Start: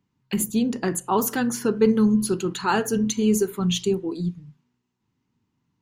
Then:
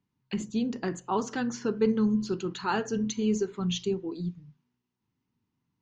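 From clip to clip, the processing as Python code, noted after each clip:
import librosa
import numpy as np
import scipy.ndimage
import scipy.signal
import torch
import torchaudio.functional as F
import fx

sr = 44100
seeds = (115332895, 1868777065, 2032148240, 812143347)

y = scipy.signal.sosfilt(scipy.signal.butter(8, 6600.0, 'lowpass', fs=sr, output='sos'), x)
y = F.gain(torch.from_numpy(y), -6.5).numpy()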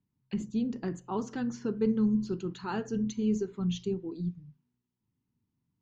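y = fx.low_shelf(x, sr, hz=350.0, db=11.0)
y = F.gain(torch.from_numpy(y), -9.0).numpy()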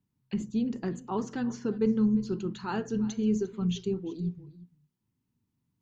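y = x + 10.0 ** (-18.5 / 20.0) * np.pad(x, (int(350 * sr / 1000.0), 0))[:len(x)]
y = F.gain(torch.from_numpy(y), 1.5).numpy()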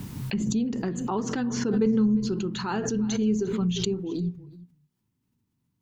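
y = fx.pre_swell(x, sr, db_per_s=30.0)
y = F.gain(torch.from_numpy(y), 2.0).numpy()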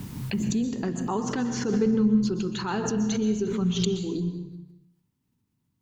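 y = fx.rev_plate(x, sr, seeds[0], rt60_s=0.79, hf_ratio=0.85, predelay_ms=110, drr_db=9.0)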